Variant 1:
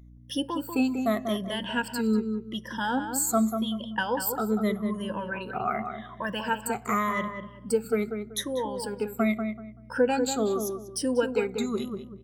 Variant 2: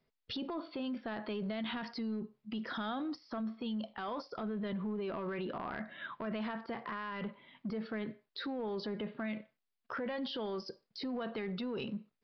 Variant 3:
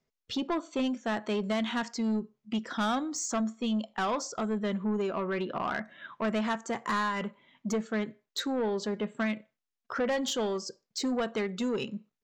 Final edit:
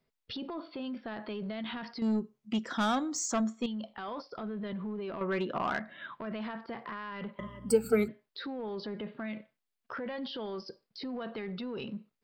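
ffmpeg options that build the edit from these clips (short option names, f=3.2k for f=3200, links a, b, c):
-filter_complex "[2:a]asplit=2[a][b];[1:a]asplit=4[c][d][e][f];[c]atrim=end=2.022[g];[a]atrim=start=2.018:end=3.662[h];[d]atrim=start=3.658:end=5.212[i];[b]atrim=start=5.208:end=5.792[j];[e]atrim=start=5.788:end=7.392[k];[0:a]atrim=start=7.388:end=8.082[l];[f]atrim=start=8.078[m];[g][h]acrossfade=d=0.004:c1=hsin:c2=hsin[n];[n][i]acrossfade=d=0.004:c1=hsin:c2=hsin[o];[o][j]acrossfade=d=0.004:c1=hsin:c2=hsin[p];[p][k]acrossfade=d=0.004:c1=hsin:c2=hsin[q];[q][l]acrossfade=d=0.004:c1=hsin:c2=hsin[r];[r][m]acrossfade=d=0.004:c1=hsin:c2=hsin"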